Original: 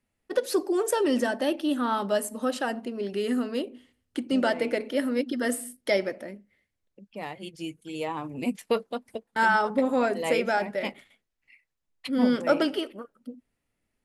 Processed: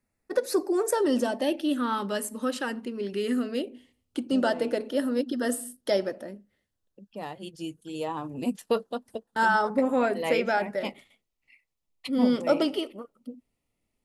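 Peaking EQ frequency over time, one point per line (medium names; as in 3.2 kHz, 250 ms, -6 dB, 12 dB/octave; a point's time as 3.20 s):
peaking EQ -14.5 dB 0.3 oct
0.92 s 3.1 kHz
1.92 s 690 Hz
3.17 s 690 Hz
4.34 s 2.2 kHz
9.54 s 2.2 kHz
10.46 s 11 kHz
10.89 s 1.6 kHz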